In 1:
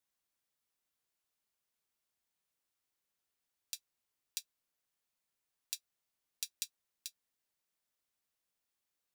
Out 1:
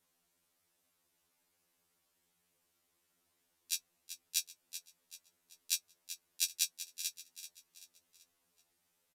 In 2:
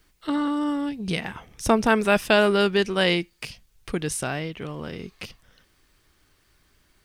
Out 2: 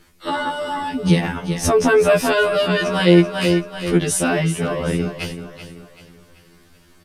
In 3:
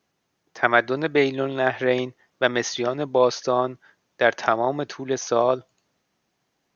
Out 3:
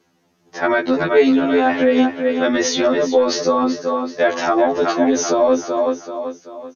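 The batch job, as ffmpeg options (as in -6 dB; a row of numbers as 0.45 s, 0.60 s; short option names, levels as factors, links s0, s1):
-filter_complex "[0:a]asplit=2[s0][s1];[s1]aecho=0:1:384|768|1152|1536:0.266|0.112|0.0469|0.0197[s2];[s0][s2]amix=inputs=2:normalize=0,aresample=32000,aresample=44100,equalizer=f=1600:t=o:w=2.7:g=-5.5,acrossover=split=130|2800[s3][s4][s5];[s4]acontrast=35[s6];[s3][s6][s5]amix=inputs=3:normalize=0,alimiter=level_in=5.62:limit=0.891:release=50:level=0:latency=1,afftfilt=real='re*2*eq(mod(b,4),0)':imag='im*2*eq(mod(b,4),0)':win_size=2048:overlap=0.75,volume=0.708"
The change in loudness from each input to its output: +7.0 LU, +5.0 LU, +5.5 LU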